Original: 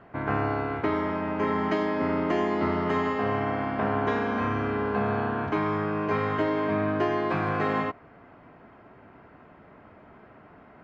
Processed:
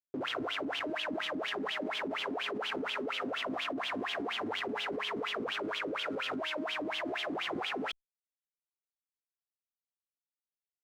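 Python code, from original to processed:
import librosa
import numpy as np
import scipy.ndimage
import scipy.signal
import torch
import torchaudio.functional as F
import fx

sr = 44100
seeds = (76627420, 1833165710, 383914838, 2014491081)

y = fx.spec_ripple(x, sr, per_octave=1.0, drift_hz=0.36, depth_db=9)
y = fx.formant_shift(y, sr, semitones=5)
y = fx.high_shelf(y, sr, hz=2100.0, db=-8.0)
y = fx.schmitt(y, sr, flips_db=-37.5)
y = fx.wah_lfo(y, sr, hz=4.2, low_hz=260.0, high_hz=3300.0, q=8.5)
y = fx.dynamic_eq(y, sr, hz=340.0, q=2.4, threshold_db=-44.0, ratio=4.0, max_db=-4)
y = fx.env_flatten(y, sr, amount_pct=100)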